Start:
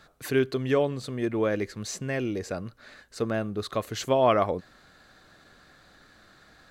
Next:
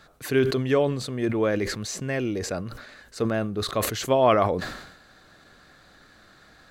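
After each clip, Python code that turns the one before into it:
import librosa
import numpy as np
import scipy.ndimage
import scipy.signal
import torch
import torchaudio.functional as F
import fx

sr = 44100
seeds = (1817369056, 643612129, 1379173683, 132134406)

y = fx.sustainer(x, sr, db_per_s=64.0)
y = F.gain(torch.from_numpy(y), 2.0).numpy()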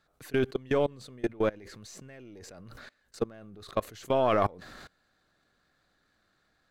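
y = np.where(x < 0.0, 10.0 ** (-3.0 / 20.0) * x, x)
y = fx.level_steps(y, sr, step_db=24)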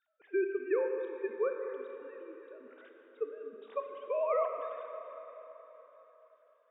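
y = fx.sine_speech(x, sr)
y = fx.rev_plate(y, sr, seeds[0], rt60_s=4.0, hf_ratio=0.85, predelay_ms=0, drr_db=3.0)
y = F.gain(torch.from_numpy(y), -6.0).numpy()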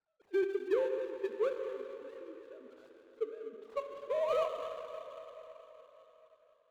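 y = scipy.signal.medfilt(x, 25)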